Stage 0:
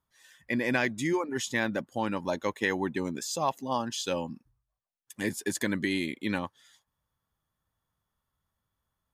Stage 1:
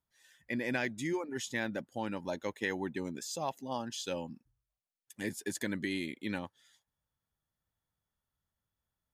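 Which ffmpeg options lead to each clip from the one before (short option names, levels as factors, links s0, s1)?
-af "equalizer=f=1100:t=o:w=0.33:g=-6.5,volume=0.501"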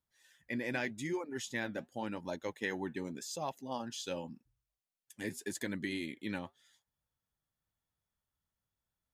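-af "flanger=delay=0.5:depth=7.3:regen=-75:speed=0.86:shape=triangular,volume=1.26"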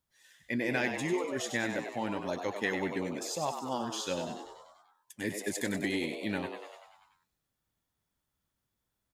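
-filter_complex "[0:a]asplit=9[s0][s1][s2][s3][s4][s5][s6][s7][s8];[s1]adelay=97,afreqshift=97,volume=0.422[s9];[s2]adelay=194,afreqshift=194,volume=0.254[s10];[s3]adelay=291,afreqshift=291,volume=0.151[s11];[s4]adelay=388,afreqshift=388,volume=0.0912[s12];[s5]adelay=485,afreqshift=485,volume=0.055[s13];[s6]adelay=582,afreqshift=582,volume=0.0327[s14];[s7]adelay=679,afreqshift=679,volume=0.0197[s15];[s8]adelay=776,afreqshift=776,volume=0.0117[s16];[s0][s9][s10][s11][s12][s13][s14][s15][s16]amix=inputs=9:normalize=0,volume=1.68"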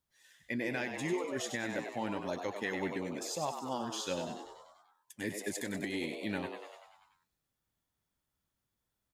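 -af "alimiter=limit=0.0794:level=0:latency=1:release=221,volume=0.794"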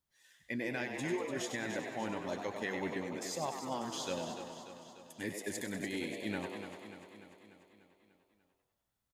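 -af "aecho=1:1:295|590|885|1180|1475|1770|2065:0.316|0.187|0.11|0.0649|0.0383|0.0226|0.0133,volume=0.794"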